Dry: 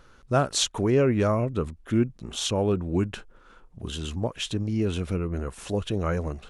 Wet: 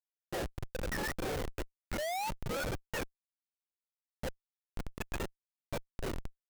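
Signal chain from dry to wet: spectrum mirrored in octaves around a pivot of 690 Hz; treble ducked by the level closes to 2200 Hz, closed at -24.5 dBFS; painted sound rise, 1.98–2.64, 580–1500 Hz -17 dBFS; vowel filter e; Schmitt trigger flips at -40.5 dBFS; gain +6.5 dB

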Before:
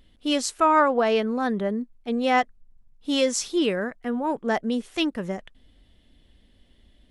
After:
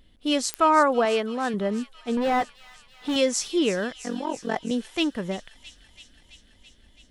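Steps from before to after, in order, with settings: 1.05–1.54 low shelf 210 Hz -10 dB; 2.17–3.16 overdrive pedal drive 26 dB, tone 1400 Hz, clips at -19 dBFS; 3.92–4.71 AM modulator 45 Hz, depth 85%; thin delay 0.332 s, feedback 74%, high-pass 2700 Hz, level -12.5 dB; pops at 0.54, -11 dBFS

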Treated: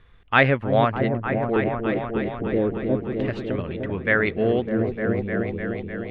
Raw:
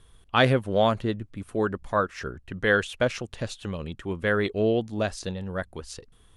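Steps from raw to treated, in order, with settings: speed mistake 24 fps film run at 25 fps; LFO low-pass square 0.32 Hz 350–2200 Hz; repeats that get brighter 0.302 s, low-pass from 400 Hz, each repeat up 1 oct, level -3 dB; gain +1 dB

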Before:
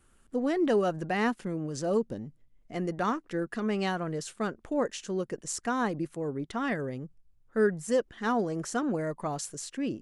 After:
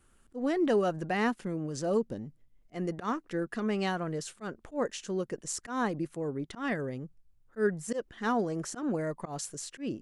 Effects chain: auto swell 0.112 s; gain -1 dB

